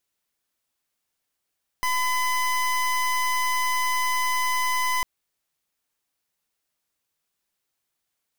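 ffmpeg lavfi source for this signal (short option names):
-f lavfi -i "aevalsrc='0.0668*(2*lt(mod(1010*t,1),0.27)-1)':d=3.2:s=44100"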